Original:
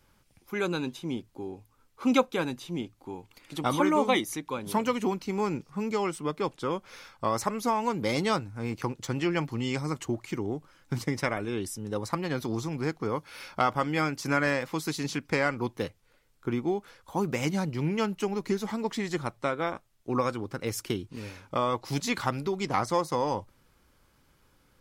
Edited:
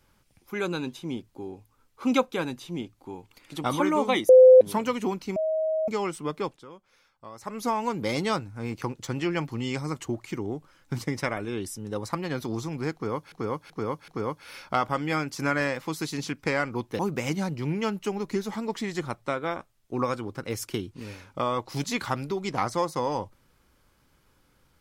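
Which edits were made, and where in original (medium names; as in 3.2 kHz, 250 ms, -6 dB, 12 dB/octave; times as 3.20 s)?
4.29–4.61 s: bleep 513 Hz -8.5 dBFS
5.36–5.88 s: bleep 633 Hz -23 dBFS
6.42–7.63 s: dip -16 dB, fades 0.23 s
12.94–13.32 s: loop, 4 plays
15.85–17.15 s: delete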